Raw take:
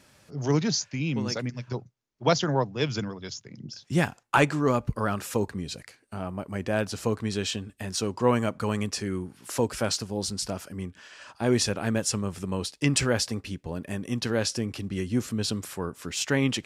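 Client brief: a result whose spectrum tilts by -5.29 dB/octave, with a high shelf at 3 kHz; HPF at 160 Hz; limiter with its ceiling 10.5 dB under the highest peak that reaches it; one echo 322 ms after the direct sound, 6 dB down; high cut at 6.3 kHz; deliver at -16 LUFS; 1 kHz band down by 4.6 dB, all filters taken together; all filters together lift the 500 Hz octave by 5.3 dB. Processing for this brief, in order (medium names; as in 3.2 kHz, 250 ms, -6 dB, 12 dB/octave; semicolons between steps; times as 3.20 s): high-pass 160 Hz; low-pass 6.3 kHz; peaking EQ 500 Hz +8.5 dB; peaking EQ 1 kHz -8.5 dB; treble shelf 3 kHz -6 dB; peak limiter -17 dBFS; delay 322 ms -6 dB; trim +13.5 dB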